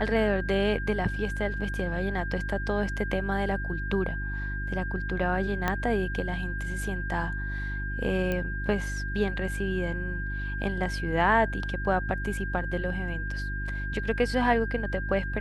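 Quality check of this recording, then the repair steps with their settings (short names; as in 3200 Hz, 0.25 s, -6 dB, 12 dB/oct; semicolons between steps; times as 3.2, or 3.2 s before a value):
hum 50 Hz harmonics 7 -33 dBFS
tone 1600 Hz -35 dBFS
5.68 pop -12 dBFS
8.32 pop -17 dBFS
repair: de-click; notch 1600 Hz, Q 30; de-hum 50 Hz, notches 7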